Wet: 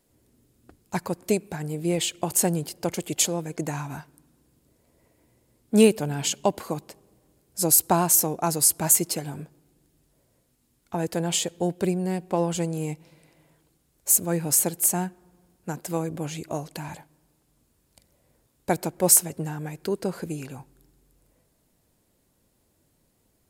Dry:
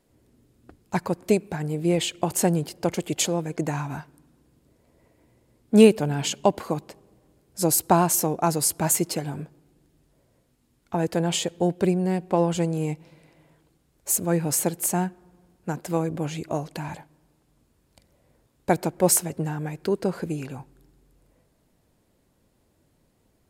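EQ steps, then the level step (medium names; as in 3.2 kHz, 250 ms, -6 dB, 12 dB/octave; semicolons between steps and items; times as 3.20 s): treble shelf 5.4 kHz +9.5 dB; -3.0 dB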